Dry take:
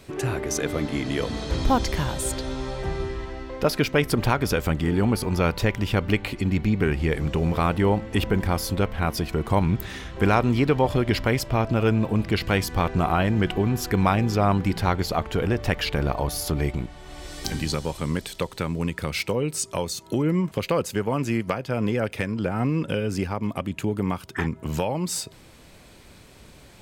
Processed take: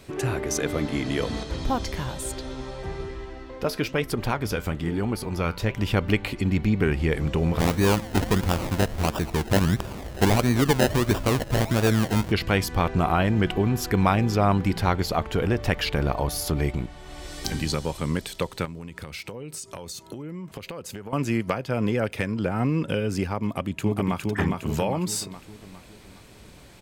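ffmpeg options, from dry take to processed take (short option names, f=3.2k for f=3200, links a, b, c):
-filter_complex "[0:a]asettb=1/sr,asplit=3[a][b][c];[a]atrim=end=1.434[d];[b]atrim=start=1.43:end=5.77,asetpts=PTS-STARTPTS,afade=t=in:d=0.004:c=qsin,afade=t=out:st=4.336:d=0.004:c=qsin,flanger=delay=2.4:depth=8.9:regen=71:speed=1.1:shape=sinusoidal[e];[c]atrim=start=5.766[f];[d][e]acrossfade=d=0.004:c1=hsin:c2=qsin[g];[g][f]acrossfade=d=0.004:c1=qsin:c2=hsin,asplit=3[h][i][j];[h]afade=t=out:st=7.58:d=0.02[k];[i]acrusher=samples=30:mix=1:aa=0.000001:lfo=1:lforange=18:lforate=1.5,afade=t=in:st=7.58:d=0.02,afade=t=out:st=12.3:d=0.02[l];[j]afade=t=in:st=12.3:d=0.02[m];[k][l][m]amix=inputs=3:normalize=0,asettb=1/sr,asplit=3[n][o][p];[n]atrim=end=18.654[q];[o]atrim=start=18.65:end=21.13,asetpts=PTS-STARTPTS,afade=t=in:d=0.004:c=qsin,afade=t=out:st=2.476:d=0.004:c=qsin,acompressor=threshold=-32dB:ratio=12:attack=3.2:release=140:knee=1:detection=peak[r];[p]atrim=start=21.126[s];[q][r]acrossfade=d=0.004:c1=hsin:c2=qsin[t];[t][s]acrossfade=d=0.004:c1=qsin:c2=hsin,asplit=2[u][v];[v]afade=t=in:st=23.44:d=0.01,afade=t=out:st=24.2:d=0.01,aecho=0:1:410|820|1230|1640|2050|2460|2870:0.707946|0.353973|0.176986|0.0884932|0.0442466|0.0221233|0.0110617[w];[u][w]amix=inputs=2:normalize=0"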